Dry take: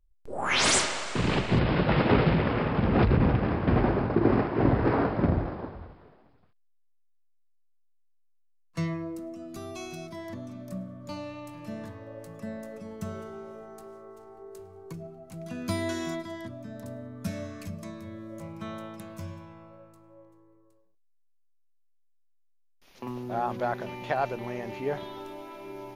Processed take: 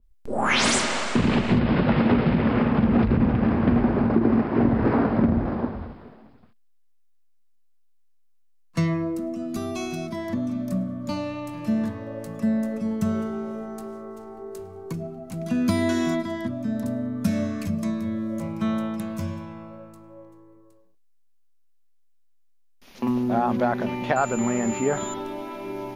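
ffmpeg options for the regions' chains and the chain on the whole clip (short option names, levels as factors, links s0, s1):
-filter_complex "[0:a]asettb=1/sr,asplit=3[s0][s1][s2];[s0]atrim=end=24.164[s3];[s1]atrim=start=24.16:end=25.14,asetpts=PTS-STARTPTS,afade=t=in:d=0.004:c=qsin,afade=t=out:st=0.976:d=0.004:c=qsin,equalizer=f=1300:t=o:w=0.34:g=9,asoftclip=type=hard:threshold=0.168,aeval=exprs='val(0)+0.0112*sin(2*PI*7100*n/s)':c=same[s4];[s2]atrim=start=25.136[s5];[s3][s4]acrossfade=d=0.004:c1=hsin:c2=qsin[s6];[s6][s5]acrossfade=d=0.004:c1=qsin:c2=hsin,equalizer=f=230:t=o:w=0.29:g=12.5,acompressor=threshold=0.0562:ratio=4,adynamicequalizer=threshold=0.00316:dfrequency=3100:dqfactor=0.7:tfrequency=3100:tqfactor=0.7:attack=5:release=100:ratio=0.375:range=2:mode=cutabove:tftype=highshelf,volume=2.37"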